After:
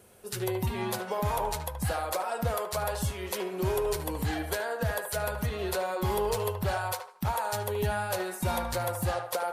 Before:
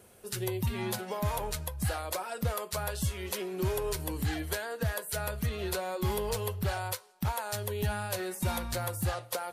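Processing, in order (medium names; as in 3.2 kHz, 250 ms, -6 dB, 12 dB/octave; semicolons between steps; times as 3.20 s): band-passed feedback delay 75 ms, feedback 46%, band-pass 1 kHz, level -4.5 dB; dynamic bell 700 Hz, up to +5 dB, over -46 dBFS, Q 0.77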